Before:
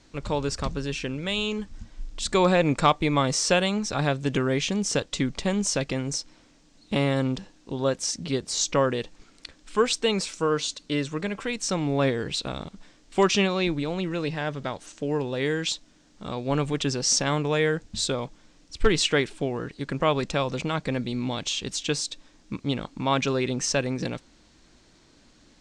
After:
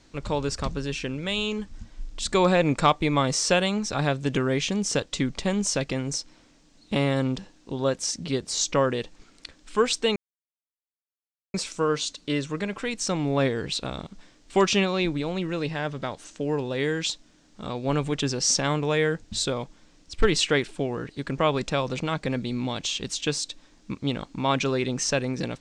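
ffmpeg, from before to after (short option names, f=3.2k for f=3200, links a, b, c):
-filter_complex "[0:a]asplit=2[a][b];[a]atrim=end=10.16,asetpts=PTS-STARTPTS,afade=t=out:st=10.156:d=0.004:c=hsin,apad=pad_dur=1.38[c];[b]atrim=start=10.16,asetpts=PTS-STARTPTS,afade=t=in:d=0.004:c=hsin[d];[c][d]concat=n=2:v=0:a=1"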